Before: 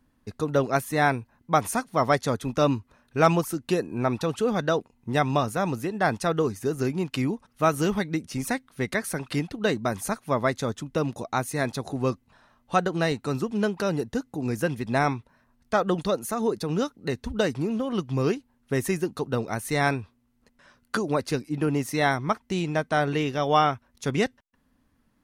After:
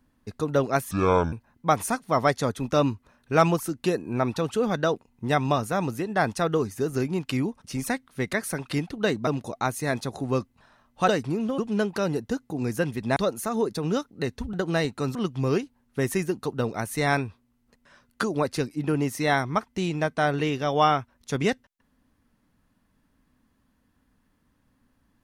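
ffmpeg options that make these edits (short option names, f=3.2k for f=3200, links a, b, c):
-filter_complex "[0:a]asplit=10[a][b][c][d][e][f][g][h][i][j];[a]atrim=end=0.914[k];[b]atrim=start=0.91:end=1.17,asetpts=PTS-STARTPTS,asetrate=27783,aresample=44100[l];[c]atrim=start=1.166:end=7.492[m];[d]atrim=start=8.248:end=9.882[n];[e]atrim=start=10.988:end=12.802[o];[f]atrim=start=17.388:end=17.892[p];[g]atrim=start=13.418:end=15.002[q];[h]atrim=start=16.018:end=17.392[r];[i]atrim=start=12.798:end=13.422[s];[j]atrim=start=17.888[t];[k][l]acrossfade=d=0.004:c1=hsin:c2=hsin[u];[u][m]acrossfade=d=0.004:c1=hsin:c2=hsin[v];[v][n]acrossfade=d=0.004:c1=hsin:c2=hsin[w];[w][o]acrossfade=d=0.004:c1=hsin:c2=hsin[x];[x][p]acrossfade=d=0.004:c1=hsin:c2=hsin[y];[y][q]acrossfade=d=0.004:c1=hsin:c2=hsin[z];[z][r]acrossfade=d=0.004:c1=hsin:c2=hsin[aa];[aa][s]acrossfade=d=0.004:c1=hsin:c2=hsin[ab];[ab][t]acrossfade=d=0.004:c1=hsin:c2=hsin"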